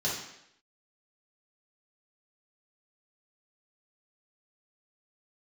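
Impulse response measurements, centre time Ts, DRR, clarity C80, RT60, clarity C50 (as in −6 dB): 47 ms, −7.0 dB, 6.5 dB, 0.75 s, 2.5 dB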